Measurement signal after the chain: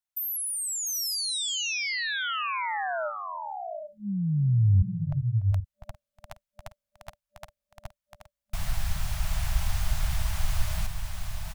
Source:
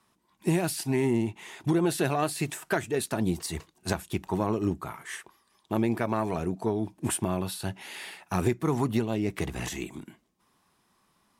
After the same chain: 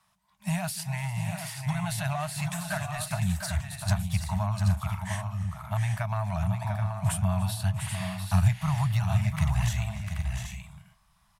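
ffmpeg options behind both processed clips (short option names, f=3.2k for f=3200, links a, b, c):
-filter_complex "[0:a]afftfilt=real='re*(1-between(b*sr/4096,210,590))':imag='im*(1-between(b*sr/4096,210,590))':win_size=4096:overlap=0.75,asubboost=boost=7.5:cutoff=91,acrossover=split=330[a][b];[b]acompressor=threshold=-31dB:ratio=3[c];[a][c]amix=inputs=2:normalize=0,aecho=1:1:292|404|698|779|820:0.112|0.106|0.422|0.398|0.126"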